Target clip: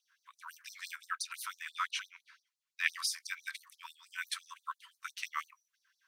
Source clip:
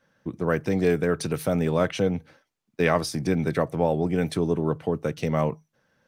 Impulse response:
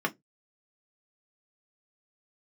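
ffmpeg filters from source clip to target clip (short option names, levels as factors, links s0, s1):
-filter_complex "[0:a]asettb=1/sr,asplit=3[s0][s1][s2];[s0]atrim=end=0.914[s3];[s1]atrim=start=0.91:end=2.84,asetpts=PTS-STARTPTS,afade=t=in:d=0.004:c=qsin,afade=t=out:st=1.926:d=0.004:c=qsin,highshelf=f=7100:g=-6[s4];[s2]atrim=start=2.836[s5];[s3][s4]acrossfade=d=0.004:c1=hsin:c2=qsin[s6];[s6][s5]acrossfade=d=0.004:c1=qsin:c2=hsin,afftfilt=real='re*gte(b*sr/1024,930*pow(4000/930,0.5+0.5*sin(2*PI*5.9*pts/sr)))':imag='im*gte(b*sr/1024,930*pow(4000/930,0.5+0.5*sin(2*PI*5.9*pts/sr)))':win_size=1024:overlap=0.75,volume=0.891"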